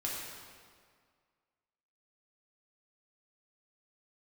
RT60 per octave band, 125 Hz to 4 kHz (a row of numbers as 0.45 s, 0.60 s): 1.9 s, 1.9 s, 1.9 s, 1.9 s, 1.7 s, 1.5 s